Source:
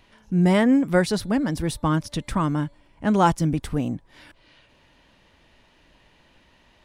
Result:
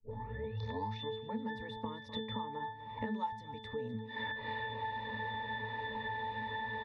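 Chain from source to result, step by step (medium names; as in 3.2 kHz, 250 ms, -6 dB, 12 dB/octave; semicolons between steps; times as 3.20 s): tape start-up on the opening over 1.53 s; recorder AGC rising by 53 dB/s; three-band isolator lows -16 dB, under 500 Hz, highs -12 dB, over 4.4 kHz; pitch-class resonator A, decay 0.44 s; feedback delay 250 ms, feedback 36%, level -19 dB; three bands compressed up and down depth 100%; trim +9.5 dB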